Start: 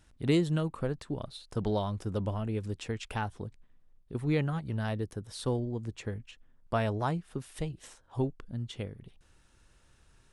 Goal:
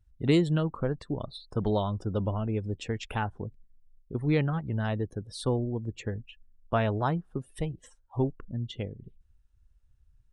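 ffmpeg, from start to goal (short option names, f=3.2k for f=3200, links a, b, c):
-af "afftdn=nr=25:nf=-50,volume=3dB"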